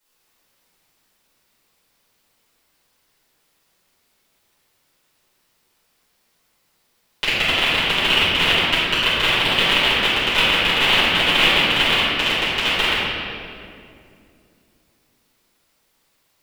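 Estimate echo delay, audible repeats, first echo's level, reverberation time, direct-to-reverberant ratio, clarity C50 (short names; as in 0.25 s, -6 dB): none, none, none, 2.5 s, -14.0 dB, -3.5 dB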